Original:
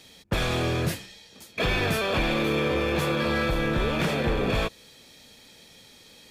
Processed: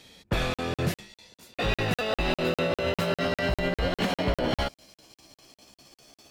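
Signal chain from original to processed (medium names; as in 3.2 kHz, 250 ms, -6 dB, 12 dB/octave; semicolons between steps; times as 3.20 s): pitch bend over the whole clip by +5.5 st starting unshifted; treble shelf 5.5 kHz -5 dB; crackling interface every 0.20 s, samples 2048, zero, from 0.54 s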